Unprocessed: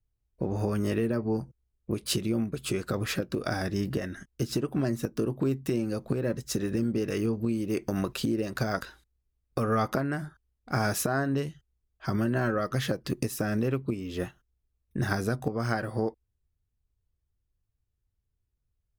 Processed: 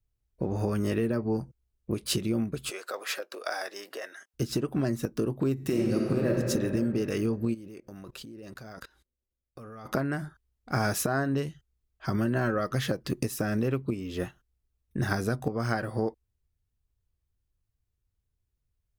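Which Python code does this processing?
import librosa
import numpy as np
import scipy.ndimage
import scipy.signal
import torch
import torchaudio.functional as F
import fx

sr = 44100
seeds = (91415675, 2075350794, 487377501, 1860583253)

y = fx.highpass(x, sr, hz=510.0, slope=24, at=(2.7, 4.34))
y = fx.reverb_throw(y, sr, start_s=5.53, length_s=0.78, rt60_s=2.8, drr_db=-1.5)
y = fx.level_steps(y, sr, step_db=22, at=(7.53, 9.85), fade=0.02)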